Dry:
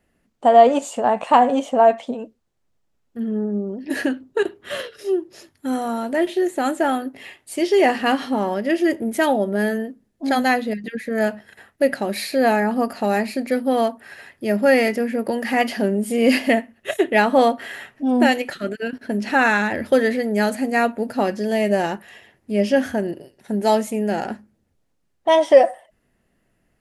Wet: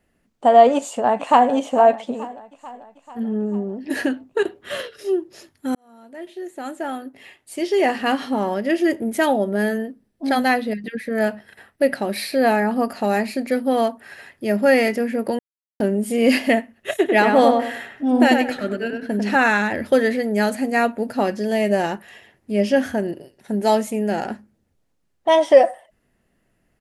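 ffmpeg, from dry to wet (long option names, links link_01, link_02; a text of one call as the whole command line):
ffmpeg -i in.wav -filter_complex "[0:a]asplit=2[link_01][link_02];[link_02]afade=type=in:start_time=0.75:duration=0.01,afade=type=out:start_time=1.51:duration=0.01,aecho=0:1:440|880|1320|1760|2200|2640|3080:0.149624|0.0972553|0.063216|0.0410904|0.0267087|0.0173607|0.0112844[link_03];[link_01][link_03]amix=inputs=2:normalize=0,asettb=1/sr,asplit=3[link_04][link_05][link_06];[link_04]atrim=end=9.874[link_07];[link_05]atrim=start=9.87:end=12.88,asetpts=PTS-STARTPTS,afade=type=in:duration=0.004:curve=qsin,afade=type=out:start_time=3.006:duration=0.004:curve=qsin,bandreject=frequency=6800:width=6.6[link_08];[link_06]atrim=start=12.876[link_09];[link_07][link_08]acrossfade=duration=0.004:curve1=hsin:curve2=qsin[link_10];[link_10][link_09]acrossfade=duration=0.004:curve1=qsin:curve2=hsin,asettb=1/sr,asplit=3[link_11][link_12][link_13];[link_11]atrim=end=16.964[link_14];[link_12]atrim=start=16.96:end=19.36,asetpts=PTS-STARTPTS,afade=type=in:duration=0.004:curve=qsin,afade=type=out:start_time=2.396:duration=0.004:curve=qsin,asplit=2[link_15][link_16];[link_16]adelay=97,lowpass=frequency=2200:poles=1,volume=-3.5dB,asplit=2[link_17][link_18];[link_18]adelay=97,lowpass=frequency=2200:poles=1,volume=0.31,asplit=2[link_19][link_20];[link_20]adelay=97,lowpass=frequency=2200:poles=1,volume=0.31,asplit=2[link_21][link_22];[link_22]adelay=97,lowpass=frequency=2200:poles=1,volume=0.31[link_23];[link_15][link_17][link_19][link_21][link_23]amix=inputs=5:normalize=0,atrim=end_sample=105840[link_24];[link_13]atrim=start=19.356[link_25];[link_14][link_24]acrossfade=duration=0.004:curve1=hsin:curve2=qsin[link_26];[link_26][link_25]acrossfade=duration=0.004:curve1=qsin:curve2=hsin,asplit=4[link_27][link_28][link_29][link_30];[link_27]atrim=end=5.75,asetpts=PTS-STARTPTS,afade=type=out:start_time=5.746:duration=0.004:curve=hsin[link_31];[link_28]atrim=start=5.75:end=15.39,asetpts=PTS-STARTPTS,afade=type=in:duration=2.74,afade=type=out:start_time=9.636:duration=0.004:curve=hsin[link_32];[link_29]atrim=start=15.39:end=15.8,asetpts=PTS-STARTPTS,volume=0[link_33];[link_30]atrim=start=15.8,asetpts=PTS-STARTPTS,afade=type=in:duration=0.004:curve=hsin[link_34];[link_31][link_32][link_33][link_34]concat=n=4:v=0:a=1" out.wav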